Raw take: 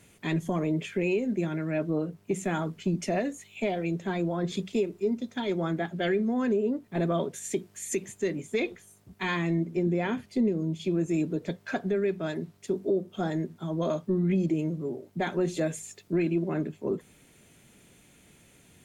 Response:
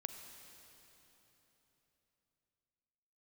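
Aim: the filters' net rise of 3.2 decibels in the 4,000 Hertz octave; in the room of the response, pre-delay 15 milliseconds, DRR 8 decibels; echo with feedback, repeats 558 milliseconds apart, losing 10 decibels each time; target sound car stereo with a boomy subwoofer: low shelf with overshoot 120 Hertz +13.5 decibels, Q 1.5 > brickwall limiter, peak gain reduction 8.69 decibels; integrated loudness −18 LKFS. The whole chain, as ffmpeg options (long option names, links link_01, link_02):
-filter_complex "[0:a]equalizer=frequency=4000:width_type=o:gain=4,aecho=1:1:558|1116|1674|2232:0.316|0.101|0.0324|0.0104,asplit=2[link_01][link_02];[1:a]atrim=start_sample=2205,adelay=15[link_03];[link_02][link_03]afir=irnorm=-1:irlink=0,volume=-6dB[link_04];[link_01][link_04]amix=inputs=2:normalize=0,lowshelf=frequency=120:width_type=q:width=1.5:gain=13.5,volume=15.5dB,alimiter=limit=-8.5dB:level=0:latency=1"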